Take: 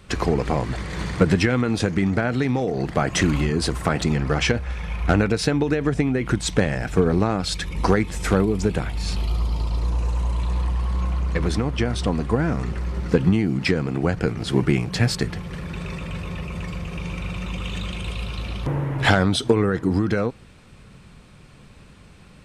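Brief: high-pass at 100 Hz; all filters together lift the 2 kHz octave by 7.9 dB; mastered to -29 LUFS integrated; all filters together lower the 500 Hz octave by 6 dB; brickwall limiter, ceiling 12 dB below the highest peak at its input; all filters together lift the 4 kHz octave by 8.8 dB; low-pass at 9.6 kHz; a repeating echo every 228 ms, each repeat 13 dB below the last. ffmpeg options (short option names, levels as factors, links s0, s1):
-af "highpass=100,lowpass=9600,equalizer=f=500:t=o:g=-8,equalizer=f=2000:t=o:g=8.5,equalizer=f=4000:t=o:g=8.5,alimiter=limit=0.335:level=0:latency=1,aecho=1:1:228|456|684:0.224|0.0493|0.0108,volume=0.531"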